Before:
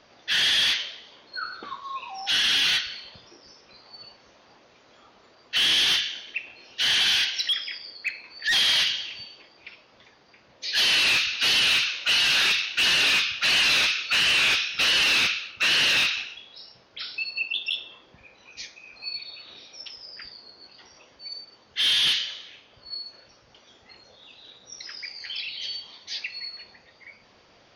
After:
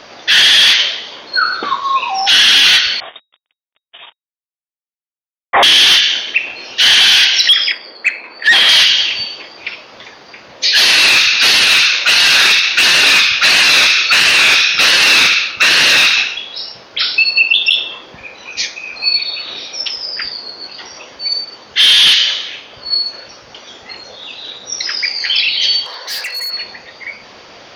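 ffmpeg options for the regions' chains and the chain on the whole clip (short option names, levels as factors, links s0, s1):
-filter_complex "[0:a]asettb=1/sr,asplit=3[s0][s1][s2];[s0]atrim=end=3.004[s3];[s1]atrim=start=3:end=5.63,asetpts=PTS-STARTPTS,afade=t=in:d=0.004:c=qsin,afade=t=out:st=2.626:d=0.004:c=qsin,agate=range=0.0224:threshold=0.00708:ratio=3:release=100:detection=peak,acrusher=bits=7:mix=0:aa=0.5,lowpass=f=3200:t=q:w=0.5098,lowpass=f=3200:t=q:w=0.6013,lowpass=f=3200:t=q:w=0.9,lowpass=f=3200:t=q:w=2.563,afreqshift=-3800[s4];[s2]atrim=start=5.626[s5];[s3][s4]acrossfade=d=0.004:c1=hsin:c2=qsin[s6];[s6][s5]acrossfade=d=0.004:c1=qsin:c2=hsin,asettb=1/sr,asplit=3[s7][s8][s9];[s7]atrim=end=7.724[s10];[s8]atrim=start=7.72:end=8.69,asetpts=PTS-STARTPTS,afade=t=in:d=0.004:c=qsin,afade=t=out:st=0.966:d=0.004:c=qsin,highpass=210,adynamicsmooth=sensitivity=0.5:basefreq=2200[s11];[s9]atrim=start=8.686[s12];[s10][s11]acrossfade=d=0.004:c1=hsin:c2=qsin[s13];[s13][s12]acrossfade=d=0.004:c1=qsin:c2=hsin,asettb=1/sr,asplit=3[s14][s15][s16];[s14]atrim=end=10.784[s17];[s15]atrim=start=10.78:end=16.37,asetpts=PTS-STARTPTS,afade=t=in:d=0.004:c=qsin,afade=t=out:st=5.586:d=0.004:c=qsin,equalizer=f=3000:w=7.1:g=-8,aecho=1:1:72:0.211,atrim=end_sample=246519[s18];[s16]atrim=start=16.366[s19];[s17][s18]acrossfade=d=0.004:c1=hsin:c2=qsin[s20];[s20][s19]acrossfade=d=0.004:c1=qsin:c2=hsin,asettb=1/sr,asplit=3[s21][s22][s23];[s21]atrim=end=25.864[s24];[s22]atrim=start=25.86:end=26.52,asetpts=PTS-STARTPTS,afade=t=in:d=0.004:c=qsin,afade=t=out:st=0.656:d=0.004:c=qsin,highpass=f=330:w=0.5412,highpass=f=330:w=1.3066,equalizer=f=350:t=q:w=4:g=-7,equalizer=f=510:t=q:w=4:g=8,equalizer=f=1000:t=q:w=4:g=4,equalizer=f=1600:t=q:w=4:g=9,equalizer=f=2400:t=q:w=4:g=-9,equalizer=f=3500:t=q:w=4:g=-9,lowpass=f=5800:w=0.5412,lowpass=f=5800:w=1.3066,acompressor=mode=upward:threshold=0.00794:ratio=2.5:attack=3.2:release=140:knee=2.83:detection=peak,asoftclip=type=hard:threshold=0.0112[s25];[s23]atrim=start=26.516[s26];[s24][s25]acrossfade=d=0.004:c1=hsin:c2=qsin[s27];[s27][s26]acrossfade=d=0.004:c1=qsin:c2=hsin,lowshelf=f=190:g=-9,alimiter=level_in=11.2:limit=0.891:release=50:level=0:latency=1,volume=0.891"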